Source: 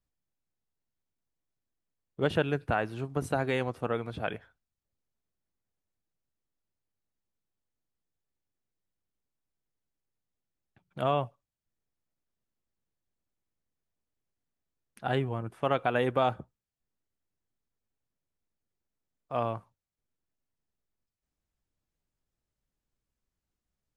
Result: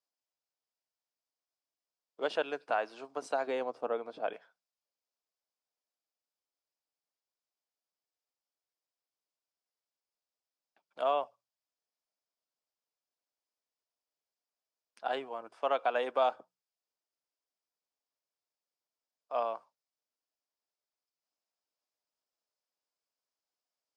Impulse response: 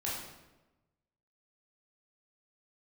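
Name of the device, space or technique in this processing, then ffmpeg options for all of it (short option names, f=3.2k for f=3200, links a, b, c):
phone speaker on a table: -filter_complex "[0:a]highpass=f=340:w=0.5412,highpass=f=340:w=1.3066,equalizer=f=360:t=q:w=4:g=-8,equalizer=f=660:t=q:w=4:g=4,equalizer=f=1k:t=q:w=4:g=3,equalizer=f=1.9k:t=q:w=4:g=-4,equalizer=f=5k:t=q:w=4:g=9,lowpass=f=8.4k:w=0.5412,lowpass=f=8.4k:w=1.3066,bandreject=f=60:t=h:w=6,bandreject=f=120:t=h:w=6,bandreject=f=180:t=h:w=6,asettb=1/sr,asplit=3[a][b][c];[a]atrim=end=3.474[d];[b]atrim=start=3.47:end=4.33,asetpts=PTS-STARTPTS,afade=t=in:d=0.004:c=qsin,afade=t=out:st=0.856:d=0.004:c=qsin,tiltshelf=f=830:g=6.5[e];[c]atrim=start=4.326[f];[d][e]acrossfade=d=0.004:c1=hsin:c2=qsin[g];[g][f]acrossfade=d=0.004:c1=qsin:c2=hsin,volume=-3.5dB"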